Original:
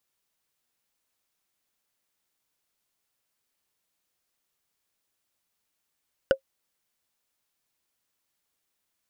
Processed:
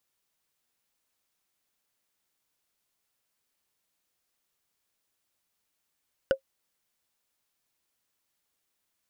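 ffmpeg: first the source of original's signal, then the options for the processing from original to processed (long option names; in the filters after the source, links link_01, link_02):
-f lavfi -i "aevalsrc='0.282*pow(10,-3*t/0.09)*sin(2*PI*537*t)+0.15*pow(10,-3*t/0.027)*sin(2*PI*1480.5*t)+0.0794*pow(10,-3*t/0.012)*sin(2*PI*2901.9*t)+0.0422*pow(10,-3*t/0.007)*sin(2*PI*4797*t)+0.0224*pow(10,-3*t/0.004)*sin(2*PI*7163.6*t)':duration=0.45:sample_rate=44100"
-af "alimiter=limit=-13.5dB:level=0:latency=1:release=24"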